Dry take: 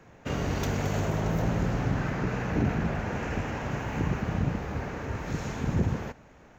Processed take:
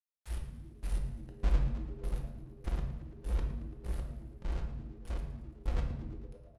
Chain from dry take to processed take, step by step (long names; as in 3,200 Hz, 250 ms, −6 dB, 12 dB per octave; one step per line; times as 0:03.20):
running median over 15 samples
inverse Chebyshev band-stop filter 170–3,300 Hz, stop band 60 dB
parametric band 10,000 Hz +12.5 dB 1.2 octaves
gate on every frequency bin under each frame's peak −30 dB strong
gate pattern "...xx..." 199 BPM −24 dB
log-companded quantiser 4 bits
high-frequency loss of the air 78 metres
on a send: echo with shifted repeats 112 ms, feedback 64%, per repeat +90 Hz, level −16 dB
on the sum: rectangular room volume 330 cubic metres, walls mixed, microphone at 0.84 metres
level +8 dB